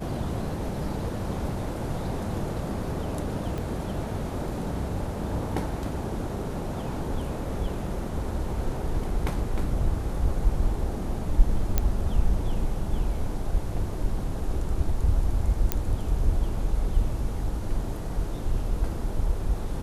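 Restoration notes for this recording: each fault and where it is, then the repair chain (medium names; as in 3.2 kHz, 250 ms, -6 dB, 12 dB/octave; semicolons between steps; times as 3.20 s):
3.58 s: pop
11.78 s: pop -8 dBFS
15.72 s: pop -8 dBFS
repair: de-click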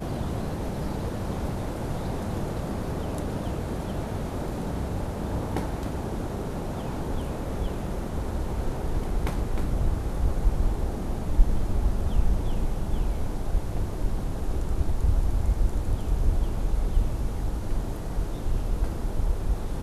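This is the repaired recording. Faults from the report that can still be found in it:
3.58 s: pop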